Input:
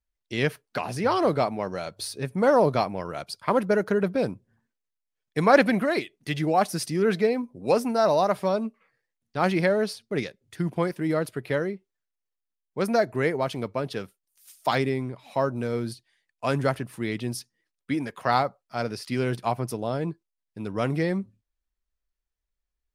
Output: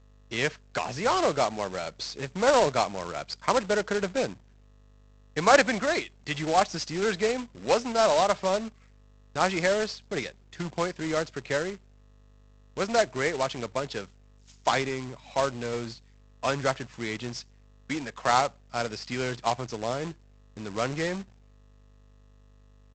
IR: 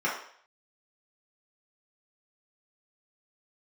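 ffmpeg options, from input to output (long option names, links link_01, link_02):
-filter_complex "[0:a]agate=range=-33dB:threshold=-50dB:ratio=3:detection=peak,acrossover=split=490|3000[link_01][link_02][link_03];[link_01]acompressor=threshold=-46dB:ratio=1.5[link_04];[link_04][link_02][link_03]amix=inputs=3:normalize=0,aeval=exprs='val(0)+0.00178*(sin(2*PI*50*n/s)+sin(2*PI*2*50*n/s)/2+sin(2*PI*3*50*n/s)/3+sin(2*PI*4*50*n/s)/4+sin(2*PI*5*50*n/s)/5)':channel_layout=same,aresample=16000,acrusher=bits=2:mode=log:mix=0:aa=0.000001,aresample=44100"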